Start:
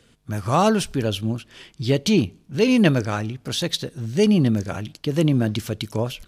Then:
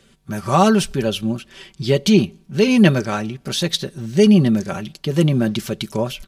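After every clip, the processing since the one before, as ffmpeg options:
ffmpeg -i in.wav -af "aecho=1:1:5.2:0.6,volume=2dB" out.wav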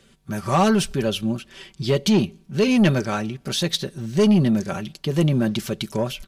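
ffmpeg -i in.wav -af "asoftclip=type=tanh:threshold=-9dB,volume=-1.5dB" out.wav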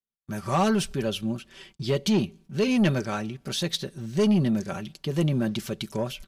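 ffmpeg -i in.wav -af "agate=range=-42dB:threshold=-47dB:ratio=16:detection=peak,volume=-5dB" out.wav

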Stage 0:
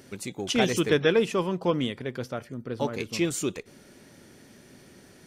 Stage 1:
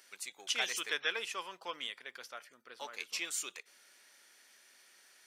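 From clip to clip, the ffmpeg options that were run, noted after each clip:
ffmpeg -i in.wav -af "highpass=1300,volume=-4dB" out.wav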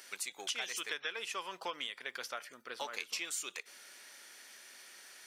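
ffmpeg -i in.wav -af "acompressor=threshold=-44dB:ratio=6,volume=8dB" out.wav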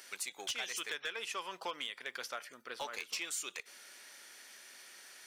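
ffmpeg -i in.wav -af "asoftclip=type=hard:threshold=-30dB" out.wav

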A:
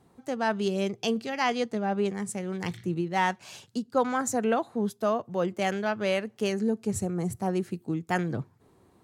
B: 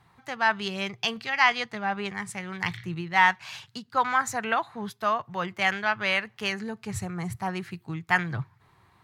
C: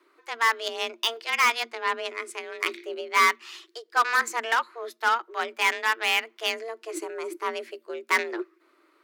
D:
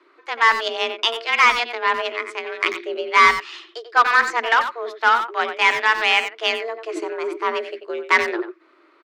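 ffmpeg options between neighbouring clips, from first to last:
ffmpeg -i in.wav -af "equalizer=frequency=125:width_type=o:width=1:gain=6,equalizer=frequency=250:width_type=o:width=1:gain=-10,equalizer=frequency=500:width_type=o:width=1:gain=-9,equalizer=frequency=1000:width_type=o:width=1:gain=7,equalizer=frequency=2000:width_type=o:width=1:gain=9,equalizer=frequency=4000:width_type=o:width=1:gain=5,equalizer=frequency=8000:width_type=o:width=1:gain=-5" out.wav
ffmpeg -i in.wav -af "aeval=exprs='0.447*(cos(1*acos(clip(val(0)/0.447,-1,1)))-cos(1*PI/2))+0.0447*(cos(7*acos(clip(val(0)/0.447,-1,1)))-cos(7*PI/2))':channel_layout=same,volume=22dB,asoftclip=hard,volume=-22dB,afreqshift=230,volume=8dB" out.wav
ffmpeg -i in.wav -filter_complex "[0:a]highpass=190,lowpass=4300,asplit=2[link_01][link_02];[link_02]adelay=90,highpass=300,lowpass=3400,asoftclip=type=hard:threshold=-19.5dB,volume=-8dB[link_03];[link_01][link_03]amix=inputs=2:normalize=0,volume=7dB" out.wav

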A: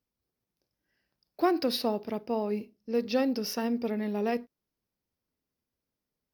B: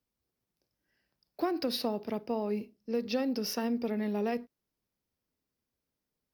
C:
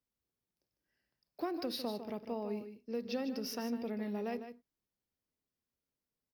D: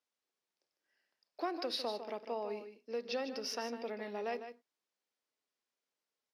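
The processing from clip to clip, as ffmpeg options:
ffmpeg -i in.wav -filter_complex "[0:a]acrossover=split=170[link_01][link_02];[link_02]acompressor=threshold=-29dB:ratio=3[link_03];[link_01][link_03]amix=inputs=2:normalize=0" out.wav
ffmpeg -i in.wav -af "aecho=1:1:152:0.316,volume=-6.5dB" out.wav
ffmpeg -i in.wav -af "highpass=480,lowpass=7000,volume=4dB" out.wav

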